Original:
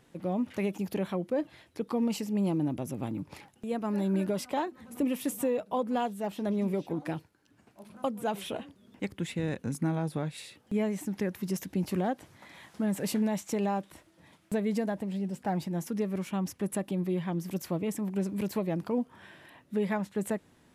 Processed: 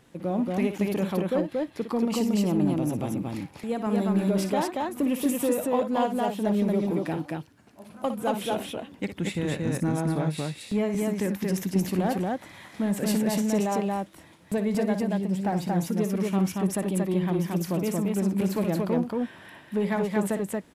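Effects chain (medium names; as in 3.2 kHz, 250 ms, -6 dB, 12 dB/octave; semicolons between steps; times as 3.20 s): in parallel at -6 dB: overload inside the chain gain 26.5 dB; on the sum: loudspeakers at several distances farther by 20 m -10 dB, 79 m -2 dB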